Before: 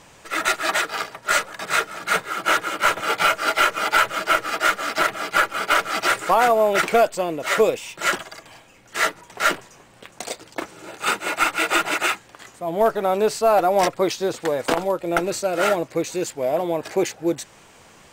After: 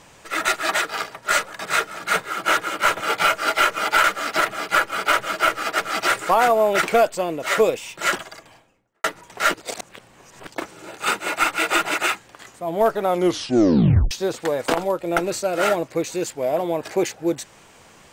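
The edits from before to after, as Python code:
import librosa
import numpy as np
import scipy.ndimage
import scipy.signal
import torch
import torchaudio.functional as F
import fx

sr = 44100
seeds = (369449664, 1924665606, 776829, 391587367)

y = fx.studio_fade_out(x, sr, start_s=8.24, length_s=0.8)
y = fx.edit(y, sr, fx.move(start_s=4.04, length_s=0.62, to_s=5.79),
    fx.reverse_span(start_s=9.54, length_s=0.93),
    fx.tape_stop(start_s=13.08, length_s=1.03), tone=tone)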